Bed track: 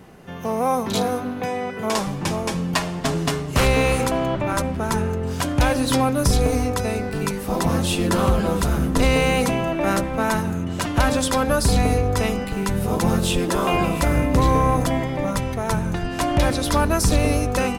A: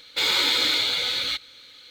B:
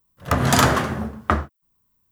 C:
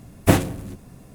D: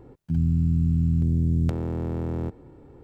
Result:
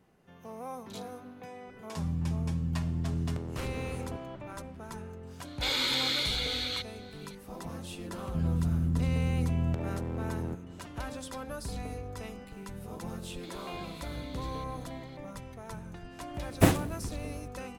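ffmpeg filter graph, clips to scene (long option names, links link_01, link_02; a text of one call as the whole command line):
ffmpeg -i bed.wav -i cue0.wav -i cue1.wav -i cue2.wav -i cue3.wav -filter_complex "[4:a]asplit=2[link_01][link_02];[1:a]asplit=2[link_03][link_04];[0:a]volume=-20dB[link_05];[link_03]aresample=32000,aresample=44100[link_06];[link_04]acompressor=threshold=-37dB:ratio=6:attack=3.2:release=140:knee=1:detection=peak[link_07];[link_01]atrim=end=3.03,asetpts=PTS-STARTPTS,volume=-10dB,afade=type=in:duration=0.004:curve=hsin,afade=type=out:start_time=3.026:duration=0.004:curve=hsin,adelay=1670[link_08];[link_06]atrim=end=1.9,asetpts=PTS-STARTPTS,volume=-8dB,afade=type=in:duration=0.004:curve=hsin,afade=type=out:start_time=1.896:duration=0.004:curve=hsin,adelay=240345S[link_09];[link_02]atrim=end=3.03,asetpts=PTS-STARTPTS,volume=-6.5dB,afade=type=in:duration=0.004:curve=hsin,afade=type=out:start_time=3.026:duration=0.004:curve=hsin,adelay=8050[link_10];[link_07]atrim=end=1.9,asetpts=PTS-STARTPTS,volume=-13.5dB,afade=type=in:duration=0.004:curve=hsin,afade=type=out:start_time=1.896:duration=0.004:curve=hsin,adelay=13270[link_11];[3:a]atrim=end=1.14,asetpts=PTS-STARTPTS,volume=-6dB,afade=type=in:duration=0.004:curve=hsin,afade=type=out:start_time=1.136:duration=0.004:curve=hsin,adelay=16340[link_12];[link_05][link_08][link_09][link_10][link_11][link_12]amix=inputs=6:normalize=0" out.wav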